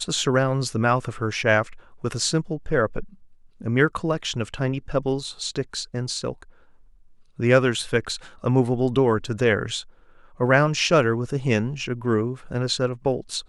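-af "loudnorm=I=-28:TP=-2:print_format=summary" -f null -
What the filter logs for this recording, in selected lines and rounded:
Input Integrated:    -23.3 LUFS
Input True Peak:      -3.5 dBTP
Input LRA:             4.1 LU
Input Threshold:     -33.8 LUFS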